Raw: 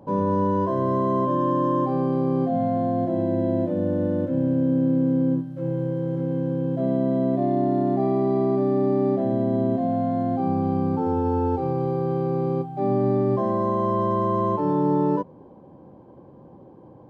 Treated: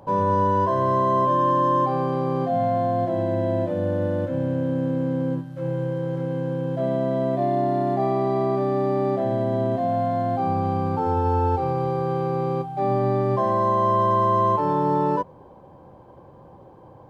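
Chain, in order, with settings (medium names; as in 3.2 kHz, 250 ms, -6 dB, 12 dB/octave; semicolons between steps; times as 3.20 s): peaking EQ 250 Hz -13.5 dB 2 oct; trim +8 dB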